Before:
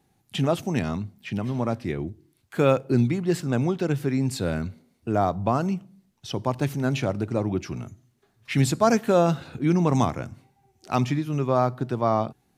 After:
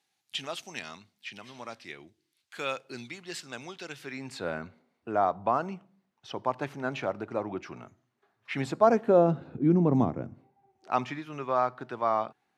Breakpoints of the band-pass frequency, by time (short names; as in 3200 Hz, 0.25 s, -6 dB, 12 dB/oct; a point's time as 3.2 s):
band-pass, Q 0.78
3.94 s 3900 Hz
4.47 s 1100 Hz
8.52 s 1100 Hz
9.42 s 300 Hz
10.23 s 300 Hz
11.16 s 1500 Hz